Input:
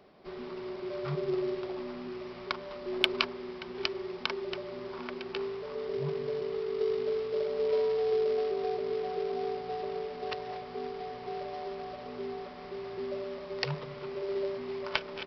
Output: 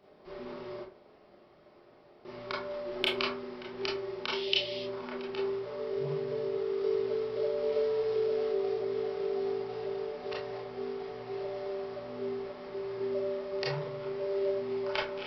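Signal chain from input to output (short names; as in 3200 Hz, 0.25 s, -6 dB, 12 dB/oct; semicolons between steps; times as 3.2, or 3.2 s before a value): 0.81–2.25 room tone; 4.3–4.82 resonant high shelf 2100 Hz +13 dB, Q 3; reverb RT60 0.30 s, pre-delay 22 ms, DRR -5 dB; gain -6.5 dB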